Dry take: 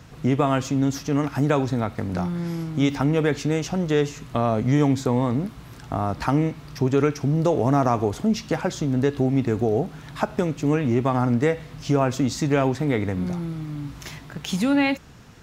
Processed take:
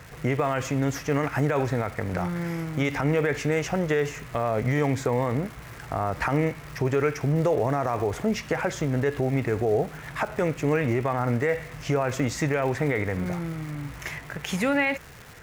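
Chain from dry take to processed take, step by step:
octave-band graphic EQ 250/500/2,000/4,000 Hz −7/+5/+10/−8 dB
brickwall limiter −14.5 dBFS, peak gain reduction 10 dB
surface crackle 410 per second −37 dBFS

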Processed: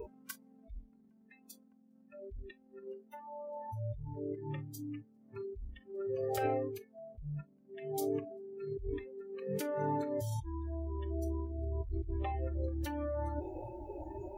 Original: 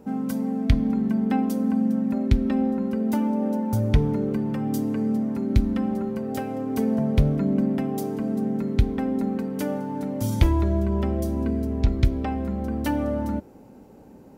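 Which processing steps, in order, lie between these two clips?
compressor whose output falls as the input rises −35 dBFS, ratio −1
noise reduction from a noise print of the clip's start 29 dB
level +1 dB

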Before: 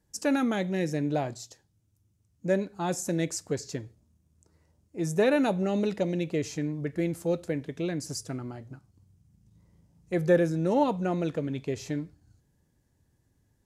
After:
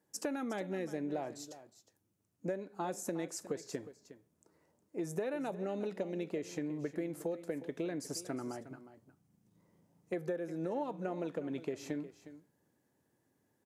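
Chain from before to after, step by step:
high-pass filter 270 Hz 12 dB per octave
parametric band 5,300 Hz −7.5 dB 2.4 octaves
downward compressor 16 to 1, threshold −35 dBFS, peak gain reduction 18 dB
single-tap delay 361 ms −14.5 dB
level +1.5 dB

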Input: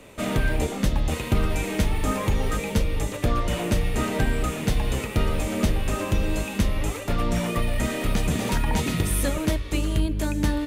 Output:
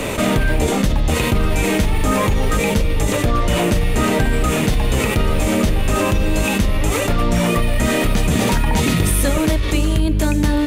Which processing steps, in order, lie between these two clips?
envelope flattener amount 70%
level +3 dB

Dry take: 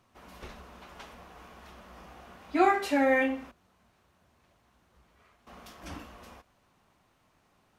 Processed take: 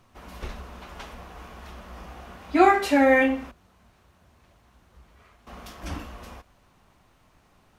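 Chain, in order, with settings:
low-shelf EQ 66 Hz +12 dB
level +6 dB

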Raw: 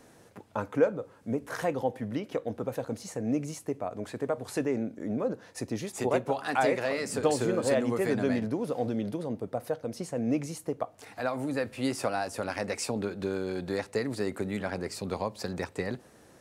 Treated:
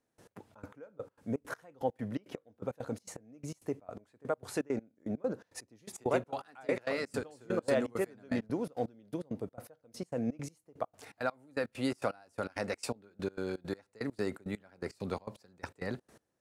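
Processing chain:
dynamic equaliser 1,400 Hz, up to +5 dB, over −56 dBFS, Q 6.8
gate pattern "..x.xx.x." 166 BPM −24 dB
level −3 dB

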